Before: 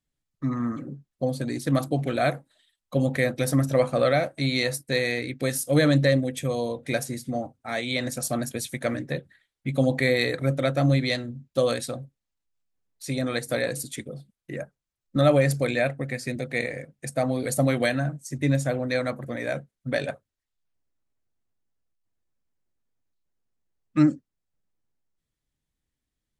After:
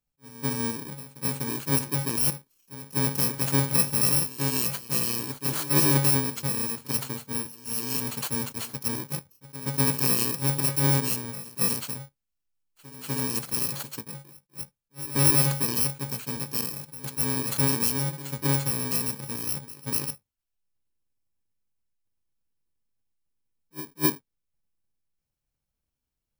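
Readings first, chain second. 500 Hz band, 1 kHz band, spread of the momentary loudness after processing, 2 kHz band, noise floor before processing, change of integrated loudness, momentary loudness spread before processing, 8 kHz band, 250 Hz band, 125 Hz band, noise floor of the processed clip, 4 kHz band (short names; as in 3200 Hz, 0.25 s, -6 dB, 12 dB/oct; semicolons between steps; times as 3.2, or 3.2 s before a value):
-11.0 dB, -2.5 dB, 16 LU, -7.0 dB, -85 dBFS, +0.5 dB, 13 LU, +9.0 dB, -5.0 dB, -2.5 dB, -84 dBFS, +1.0 dB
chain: FFT order left unsorted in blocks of 64 samples; pre-echo 0.247 s -16 dB; attack slew limiter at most 420 dB/s; gain -1.5 dB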